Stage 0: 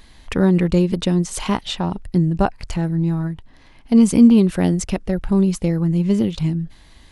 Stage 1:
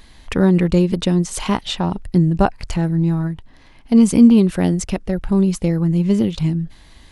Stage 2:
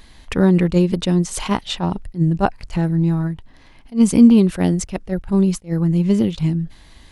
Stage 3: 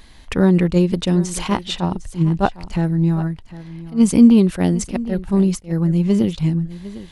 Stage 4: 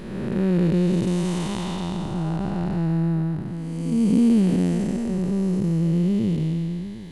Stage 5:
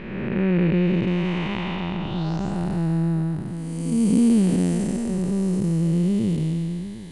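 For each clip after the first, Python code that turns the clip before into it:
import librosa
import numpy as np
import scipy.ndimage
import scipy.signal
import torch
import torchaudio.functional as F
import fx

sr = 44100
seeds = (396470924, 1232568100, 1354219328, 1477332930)

y1 = fx.rider(x, sr, range_db=3, speed_s=2.0)
y2 = fx.attack_slew(y1, sr, db_per_s=300.0)
y3 = y2 + 10.0 ** (-16.5 / 20.0) * np.pad(y2, (int(754 * sr / 1000.0), 0))[:len(y2)]
y4 = fx.spec_blur(y3, sr, span_ms=589.0)
y4 = y4 * librosa.db_to_amplitude(-1.0)
y5 = fx.filter_sweep_lowpass(y4, sr, from_hz=2400.0, to_hz=9500.0, start_s=2.0, end_s=2.58, q=3.2)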